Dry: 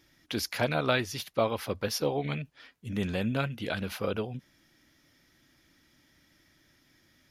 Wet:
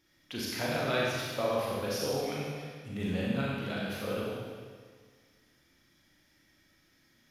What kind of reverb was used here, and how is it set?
Schroeder reverb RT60 1.7 s, combs from 30 ms, DRR -5 dB; trim -8 dB

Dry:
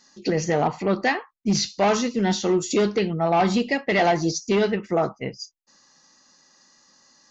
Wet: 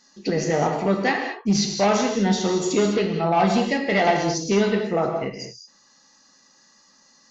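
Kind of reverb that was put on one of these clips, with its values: gated-style reverb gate 240 ms flat, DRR 2.5 dB; trim -1 dB

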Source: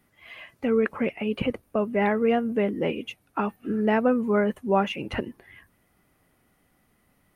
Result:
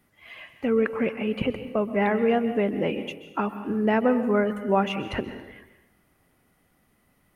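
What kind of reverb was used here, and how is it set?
plate-style reverb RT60 1 s, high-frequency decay 0.85×, pre-delay 115 ms, DRR 10.5 dB

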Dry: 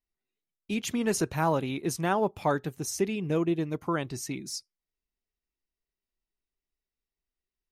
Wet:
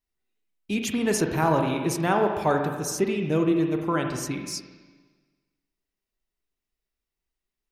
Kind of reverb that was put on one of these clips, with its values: spring tank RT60 1.4 s, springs 39/43/57 ms, chirp 45 ms, DRR 3.5 dB; trim +3 dB

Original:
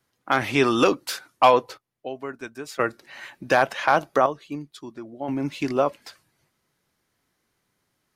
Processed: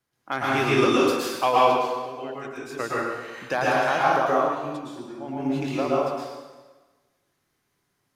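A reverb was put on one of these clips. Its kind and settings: plate-style reverb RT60 1.3 s, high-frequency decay 0.9×, pre-delay 100 ms, DRR -6.5 dB; trim -7.5 dB

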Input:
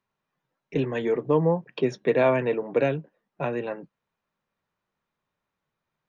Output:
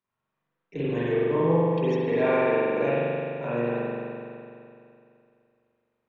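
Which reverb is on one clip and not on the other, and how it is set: spring tank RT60 2.6 s, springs 42 ms, chirp 75 ms, DRR -10 dB; trim -9.5 dB

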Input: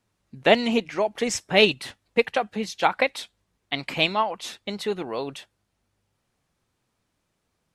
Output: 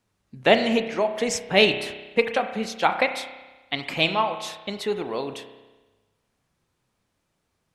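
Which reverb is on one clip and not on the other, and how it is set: spring tank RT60 1.2 s, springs 31 ms, chirp 70 ms, DRR 8 dB

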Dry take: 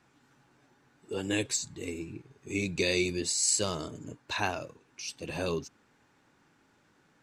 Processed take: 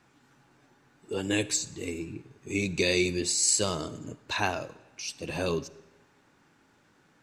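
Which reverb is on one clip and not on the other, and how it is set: algorithmic reverb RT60 1.1 s, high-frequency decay 0.9×, pre-delay 10 ms, DRR 18 dB; trim +2.5 dB

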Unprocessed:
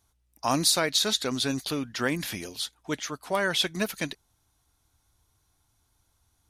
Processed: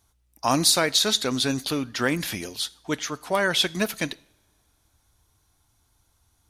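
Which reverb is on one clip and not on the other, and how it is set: two-slope reverb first 0.6 s, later 3.4 s, from -28 dB, DRR 19 dB; trim +3.5 dB

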